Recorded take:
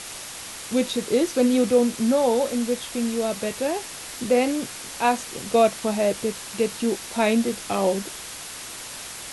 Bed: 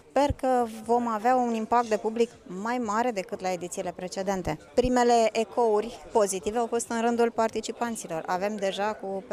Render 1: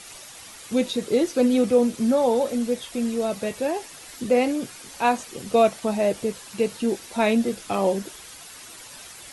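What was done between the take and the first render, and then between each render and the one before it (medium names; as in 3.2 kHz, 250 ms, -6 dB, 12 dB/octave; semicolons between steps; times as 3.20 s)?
noise reduction 9 dB, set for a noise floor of -37 dBFS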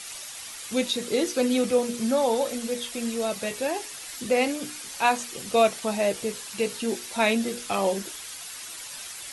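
tilt shelf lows -4.5 dB, about 1.1 kHz; hum notches 60/120/180/240/300/360/420/480 Hz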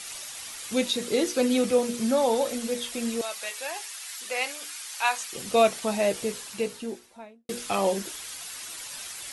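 3.21–5.33 s: high-pass 970 Hz; 6.27–7.49 s: studio fade out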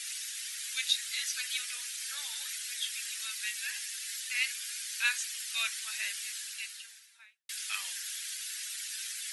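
Chebyshev high-pass 1.6 kHz, order 4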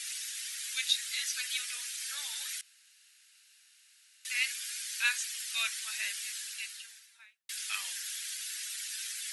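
2.61–4.25 s: room tone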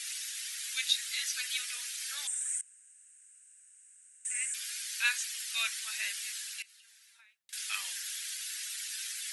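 2.27–4.54 s: FFT filter 170 Hz 0 dB, 260 Hz +9 dB, 370 Hz +1 dB, 590 Hz -19 dB, 950 Hz -14 dB, 1.6 kHz -5 dB, 2.7 kHz -12 dB, 4.5 kHz -25 dB, 8.5 kHz +15 dB, 12 kHz -23 dB; 6.62–7.53 s: compression 12:1, threshold -55 dBFS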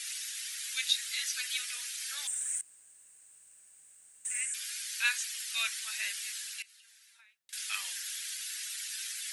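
2.25–4.41 s: companded quantiser 6-bit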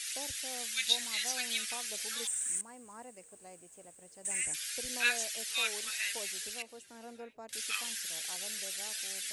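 add bed -24 dB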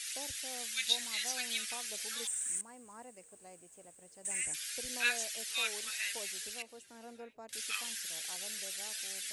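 trim -2 dB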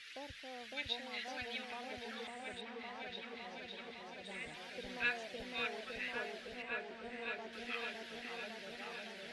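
distance through air 340 m; delay with an opening low-pass 558 ms, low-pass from 750 Hz, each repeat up 1 oct, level 0 dB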